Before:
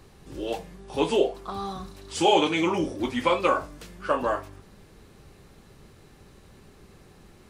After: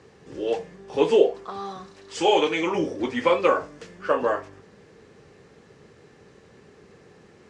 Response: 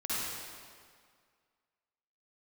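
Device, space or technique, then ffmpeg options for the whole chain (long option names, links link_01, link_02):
car door speaker: -filter_complex "[0:a]asettb=1/sr,asplit=3[link_01][link_02][link_03];[link_01]atrim=end=1.444[link_04];[link_02]atrim=start=1.44:end=2.75,asetpts=PTS-STARTPTS,afade=type=in:duration=0.004:curve=qsin,afade=type=out:start_time=1.306:duration=0.004:curve=qsin,lowshelf=frequency=410:gain=-6[link_05];[link_03]atrim=start=2.746[link_06];[link_04][link_05]acrossfade=duration=0.004:curve1=hsin:curve2=qsin[link_07];[link_07][link_06]acrossfade=duration=0.004:curve1=qsin:curve2=hsin,highpass=110,equalizer=frequency=460:width_type=q:width=4:gain=9,equalizer=frequency=1800:width_type=q:width=4:gain=5,equalizer=frequency=3900:width_type=q:width=4:gain=-4,lowpass=frequency=7400:width=0.5412,lowpass=frequency=7400:width=1.3066"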